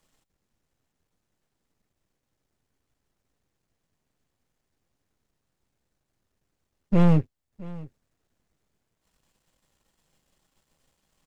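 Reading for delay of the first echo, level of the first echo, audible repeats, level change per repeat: 667 ms, −20.0 dB, 1, repeats not evenly spaced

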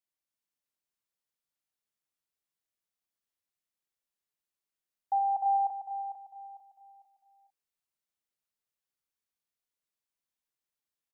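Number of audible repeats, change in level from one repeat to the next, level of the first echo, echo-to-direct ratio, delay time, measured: 3, repeats not evenly spaced, −13.0 dB, −1.0 dB, 65 ms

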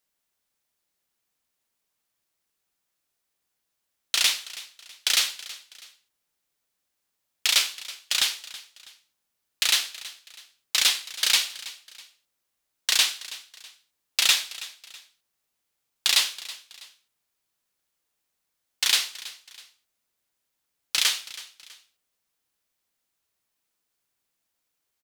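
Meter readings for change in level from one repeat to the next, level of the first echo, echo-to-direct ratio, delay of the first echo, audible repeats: −8.5 dB, −17.5 dB, −17.0 dB, 325 ms, 2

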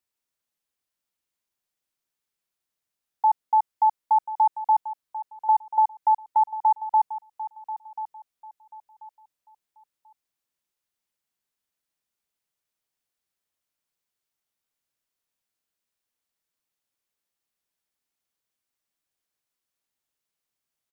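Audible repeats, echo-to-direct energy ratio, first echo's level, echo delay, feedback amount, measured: 2, −13.0 dB, −13.5 dB, 1,037 ms, 26%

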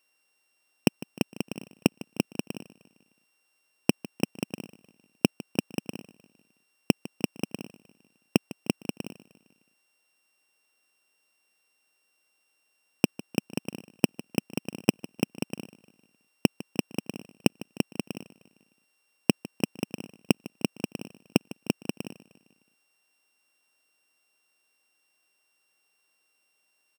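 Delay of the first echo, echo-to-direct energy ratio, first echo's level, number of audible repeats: 153 ms, −17.0 dB, −18.5 dB, 3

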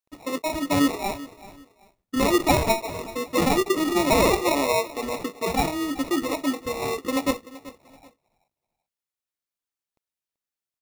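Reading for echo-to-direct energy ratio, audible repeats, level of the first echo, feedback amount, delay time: −17.0 dB, 2, −17.5 dB, 27%, 384 ms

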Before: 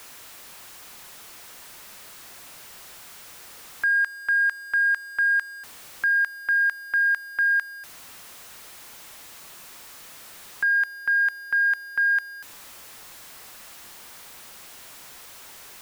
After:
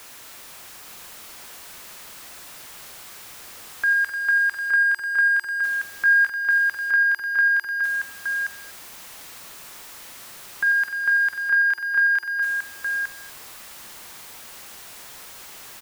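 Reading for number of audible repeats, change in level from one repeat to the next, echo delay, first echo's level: 5, repeats not evenly spaced, 42 ms, −13.5 dB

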